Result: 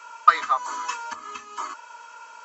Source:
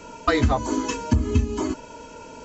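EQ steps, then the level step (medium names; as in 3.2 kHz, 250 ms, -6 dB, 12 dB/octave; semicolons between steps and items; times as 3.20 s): resonant high-pass 1.2 kHz, resonance Q 5.3; -4.0 dB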